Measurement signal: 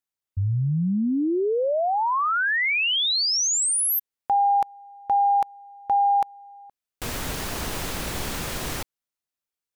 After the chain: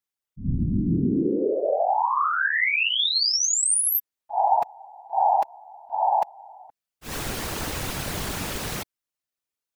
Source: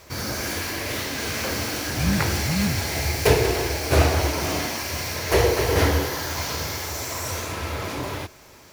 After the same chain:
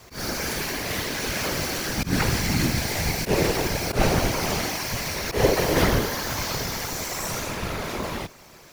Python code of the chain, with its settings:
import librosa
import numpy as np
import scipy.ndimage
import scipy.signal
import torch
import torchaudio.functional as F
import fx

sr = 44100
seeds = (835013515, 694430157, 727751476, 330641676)

y = fx.auto_swell(x, sr, attack_ms=127.0)
y = fx.whisperise(y, sr, seeds[0])